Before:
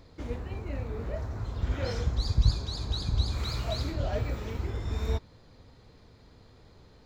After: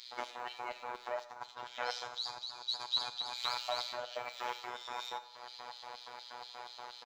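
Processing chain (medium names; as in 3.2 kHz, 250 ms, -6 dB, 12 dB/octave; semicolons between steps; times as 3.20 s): 1.24–2.98 s: gate -32 dBFS, range -18 dB; treble shelf 4.5 kHz -7 dB; comb 6.9 ms, depth 42%; compression 8:1, threshold -42 dBFS, peak gain reduction 24 dB; LFO high-pass square 4.2 Hz 900–3700 Hz; robot voice 122 Hz; Schroeder reverb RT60 1 s, combs from 27 ms, DRR 12.5 dB; trim +15.5 dB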